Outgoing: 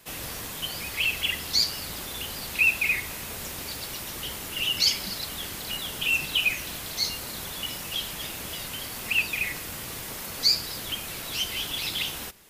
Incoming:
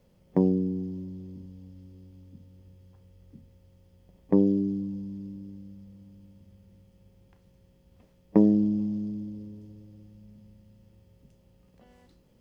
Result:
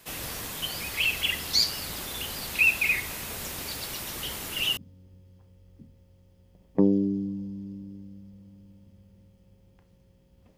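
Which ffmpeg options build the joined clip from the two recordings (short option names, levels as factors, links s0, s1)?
-filter_complex "[0:a]apad=whole_dur=10.57,atrim=end=10.57,atrim=end=4.772[s0];[1:a]atrim=start=2.308:end=8.11[s1];[s0][s1]acrossfade=d=0.004:c1=hsin:c2=hsin"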